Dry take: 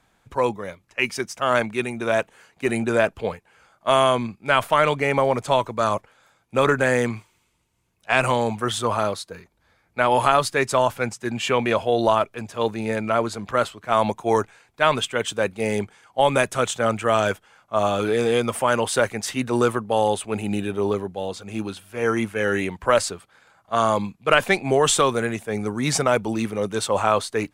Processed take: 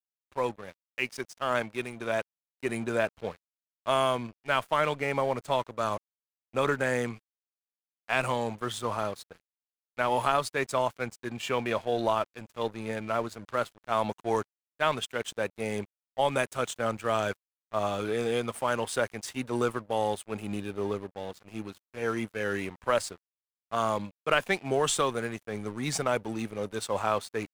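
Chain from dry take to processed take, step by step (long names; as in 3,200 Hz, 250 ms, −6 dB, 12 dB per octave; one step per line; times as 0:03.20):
dead-zone distortion −37 dBFS
level −7.5 dB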